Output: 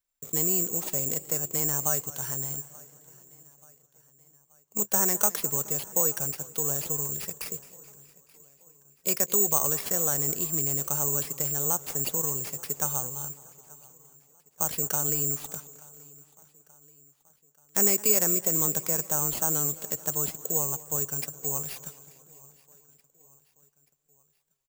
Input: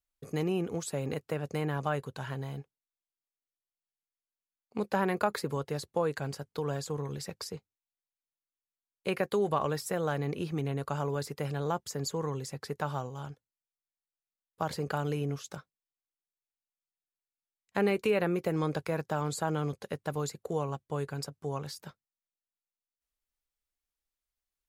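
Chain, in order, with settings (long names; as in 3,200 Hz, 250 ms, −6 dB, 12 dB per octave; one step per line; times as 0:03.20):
repeating echo 881 ms, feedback 52%, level −23.5 dB
bad sample-rate conversion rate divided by 6×, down none, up zero stuff
feedback echo with a swinging delay time 213 ms, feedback 62%, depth 80 cents, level −19 dB
level −3 dB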